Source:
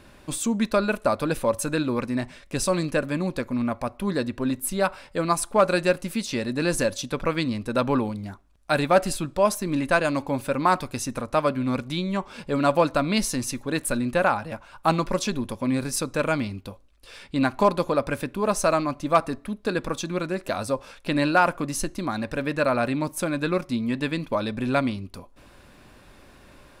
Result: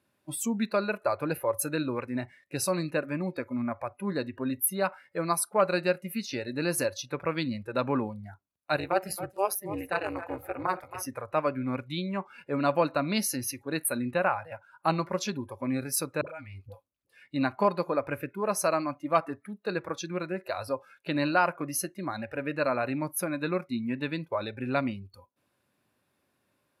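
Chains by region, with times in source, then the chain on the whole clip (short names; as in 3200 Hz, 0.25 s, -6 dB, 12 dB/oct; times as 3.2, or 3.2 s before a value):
8.76–11.06 high shelf 10000 Hz +6 dB + AM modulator 200 Hz, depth 100% + feedback echo 0.273 s, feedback 22%, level -12 dB
16.21–17.21 low shelf 200 Hz +5 dB + dispersion highs, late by 62 ms, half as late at 480 Hz + compressor 16:1, threshold -29 dBFS
whole clip: HPF 93 Hz 24 dB/oct; spectral noise reduction 18 dB; bell 12000 Hz +13 dB 0.39 oct; gain -5 dB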